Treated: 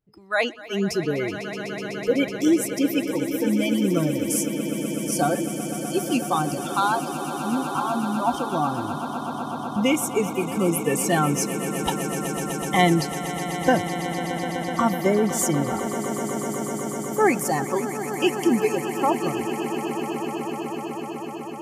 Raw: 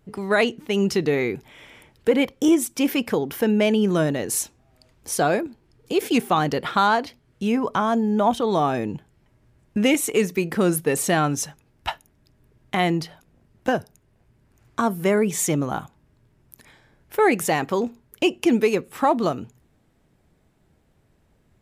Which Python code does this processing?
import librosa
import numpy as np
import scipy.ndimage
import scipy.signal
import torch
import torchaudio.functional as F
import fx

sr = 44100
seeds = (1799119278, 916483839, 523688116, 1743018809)

y = fx.rider(x, sr, range_db=5, speed_s=2.0)
y = fx.noise_reduce_blind(y, sr, reduce_db=20)
y = fx.echo_swell(y, sr, ms=125, loudest=8, wet_db=-14)
y = F.gain(torch.from_numpy(y), -1.5).numpy()